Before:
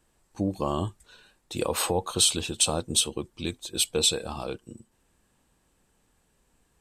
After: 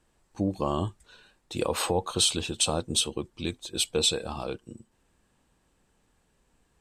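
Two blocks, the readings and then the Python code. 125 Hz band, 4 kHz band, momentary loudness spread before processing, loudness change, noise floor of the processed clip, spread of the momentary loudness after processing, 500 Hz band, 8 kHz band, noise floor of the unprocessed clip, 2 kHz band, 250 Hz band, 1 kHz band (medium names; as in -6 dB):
0.0 dB, -1.0 dB, 14 LU, -1.5 dB, -70 dBFS, 12 LU, 0.0 dB, -3.5 dB, -69 dBFS, -0.5 dB, 0.0 dB, 0.0 dB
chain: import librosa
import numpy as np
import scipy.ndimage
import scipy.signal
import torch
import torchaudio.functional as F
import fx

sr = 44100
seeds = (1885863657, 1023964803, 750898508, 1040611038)

y = fx.high_shelf(x, sr, hz=11000.0, db=-12.0)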